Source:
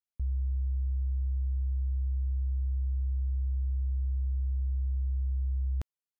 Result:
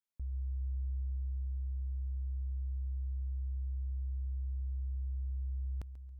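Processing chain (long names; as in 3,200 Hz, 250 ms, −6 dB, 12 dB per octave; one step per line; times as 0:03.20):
brickwall limiter −31.5 dBFS, peak gain reduction 5 dB
on a send: echo machine with several playback heads 138 ms, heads first and third, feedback 59%, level −16 dB
on the sum: level −3 dB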